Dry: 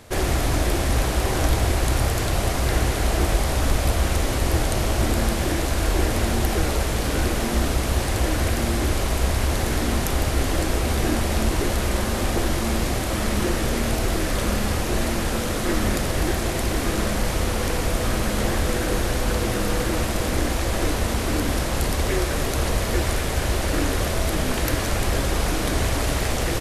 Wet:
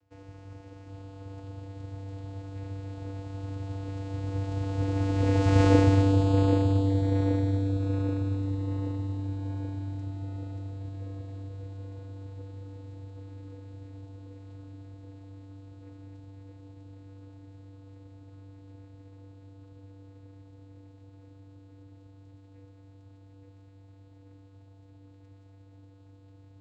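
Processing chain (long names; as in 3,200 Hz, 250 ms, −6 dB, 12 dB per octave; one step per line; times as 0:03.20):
source passing by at 0:05.66, 15 m/s, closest 2.8 metres
channel vocoder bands 8, square 97.4 Hz
on a send: feedback echo with a low-pass in the loop 780 ms, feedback 65%, low-pass 4,200 Hz, level −6 dB
on the sum: level +7.5 dB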